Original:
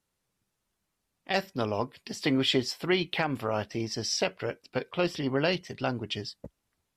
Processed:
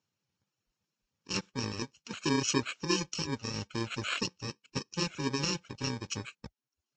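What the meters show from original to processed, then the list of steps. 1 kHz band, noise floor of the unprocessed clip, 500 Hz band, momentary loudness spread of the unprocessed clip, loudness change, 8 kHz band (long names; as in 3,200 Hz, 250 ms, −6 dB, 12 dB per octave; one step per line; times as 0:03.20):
−5.5 dB, −82 dBFS, −9.0 dB, 9 LU, −4.0 dB, +3.0 dB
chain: samples in bit-reversed order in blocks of 64 samples
reverb reduction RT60 0.63 s
Ogg Vorbis 64 kbit/s 16,000 Hz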